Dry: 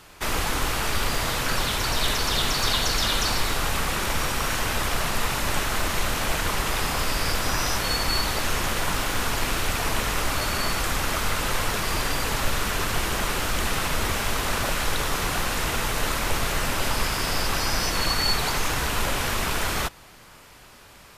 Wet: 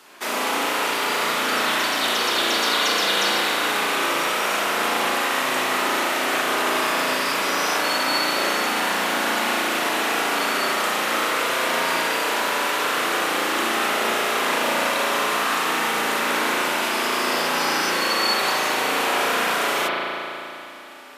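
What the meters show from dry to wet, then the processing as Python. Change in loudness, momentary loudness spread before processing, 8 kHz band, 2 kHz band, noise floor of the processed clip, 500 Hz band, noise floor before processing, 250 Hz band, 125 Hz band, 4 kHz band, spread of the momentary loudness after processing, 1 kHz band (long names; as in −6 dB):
+4.0 dB, 3 LU, 0.0 dB, +6.0 dB, −32 dBFS, +6.5 dB, −49 dBFS, +3.5 dB, −15.0 dB, +3.5 dB, 2 LU, +6.5 dB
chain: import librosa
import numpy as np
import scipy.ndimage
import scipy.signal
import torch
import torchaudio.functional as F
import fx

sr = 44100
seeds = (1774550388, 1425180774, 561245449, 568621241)

y = fx.rattle_buzz(x, sr, strikes_db=-28.0, level_db=-33.0)
y = scipy.signal.sosfilt(scipy.signal.butter(4, 250.0, 'highpass', fs=sr, output='sos'), y)
y = fx.rev_spring(y, sr, rt60_s=3.0, pass_ms=(35,), chirp_ms=30, drr_db=-5.0)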